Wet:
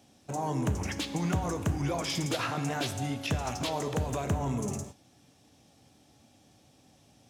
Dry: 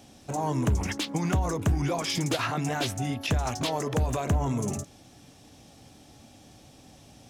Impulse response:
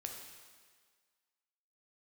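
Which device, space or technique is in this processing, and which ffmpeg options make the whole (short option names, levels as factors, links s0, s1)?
keyed gated reverb: -filter_complex "[0:a]asplit=3[s0][s1][s2];[1:a]atrim=start_sample=2205[s3];[s1][s3]afir=irnorm=-1:irlink=0[s4];[s2]apad=whole_len=321877[s5];[s4][s5]sidechaingate=range=0.0224:threshold=0.00708:ratio=16:detection=peak,volume=1.26[s6];[s0][s6]amix=inputs=2:normalize=0,highpass=69,volume=0.376"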